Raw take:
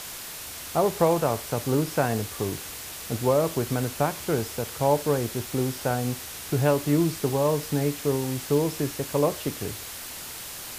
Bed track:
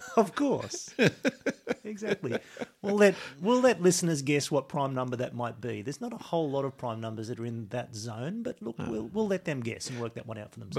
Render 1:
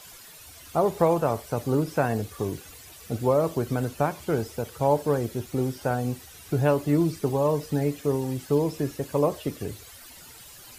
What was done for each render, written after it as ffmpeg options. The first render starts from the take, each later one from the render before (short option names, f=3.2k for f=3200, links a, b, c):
-af "afftdn=nr=13:nf=-38"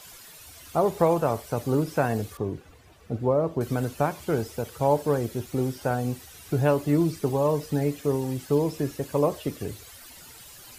-filter_complex "[0:a]asettb=1/sr,asplit=3[a][b][c];[a]atrim=end=2.374[d];[b]atrim=start=2.37:end=3.61,asetpts=PTS-STARTPTS,afade=t=in:d=0.004:c=qsin,afade=t=out:st=1.236:d=0.004:c=qsin,lowpass=f=1k:p=1[e];[c]atrim=start=3.606[f];[d][e]acrossfade=d=0.004:c1=hsin:c2=qsin[g];[g][f]acrossfade=d=0.004:c1=qsin:c2=hsin"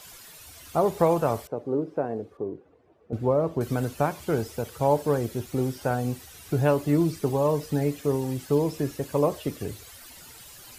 -filter_complex "[0:a]asettb=1/sr,asplit=3[a][b][c];[a]atrim=end=1.474[d];[b]atrim=start=1.47:end=3.13,asetpts=PTS-STARTPTS,afade=t=in:d=0.004:c=qsin,afade=t=out:st=1.656:d=0.004:c=qsin,bandpass=f=410:t=q:w=1.3[e];[c]atrim=start=3.126[f];[d][e]acrossfade=d=0.004:c1=hsin:c2=qsin[g];[g][f]acrossfade=d=0.004:c1=qsin:c2=hsin"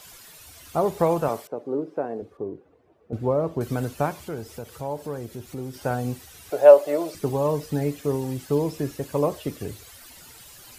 -filter_complex "[0:a]asettb=1/sr,asplit=3[a][b][c];[a]atrim=end=1.284[d];[b]atrim=start=1.28:end=2.22,asetpts=PTS-STARTPTS,afade=t=in:d=0.004:c=qsin,afade=t=out:st=0.936:d=0.004:c=qsin,highpass=200[e];[c]atrim=start=2.216[f];[d][e]acrossfade=d=0.004:c1=hsin:c2=qsin[g];[g][f]acrossfade=d=0.004:c1=qsin:c2=hsin,asettb=1/sr,asplit=3[h][i][j];[h]atrim=end=4.214[k];[i]atrim=start=4.21:end=5.74,asetpts=PTS-STARTPTS,afade=t=in:d=0.004:c=qsin,afade=t=out:st=1.526:d=0.004:c=qsin,acompressor=threshold=-41dB:ratio=1.5:attack=3.2:release=140:knee=1:detection=peak[l];[j]atrim=start=5.736[m];[k][l]acrossfade=d=0.004:c1=hsin:c2=qsin[n];[n][m]acrossfade=d=0.004:c1=qsin:c2=hsin,asettb=1/sr,asplit=3[o][p][q];[o]atrim=end=6.504[r];[p]atrim=start=6.5:end=7.15,asetpts=PTS-STARTPTS,afade=t=in:d=0.004:c=qsin,afade=t=out:st=0.646:d=0.004:c=qsin,highpass=f=580:t=q:w=5.7[s];[q]atrim=start=7.146[t];[r][s]acrossfade=d=0.004:c1=hsin:c2=qsin[u];[u][t]acrossfade=d=0.004:c1=qsin:c2=hsin"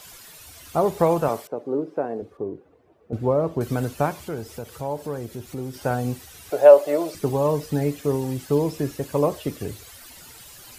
-af "volume=2dB,alimiter=limit=-2dB:level=0:latency=1"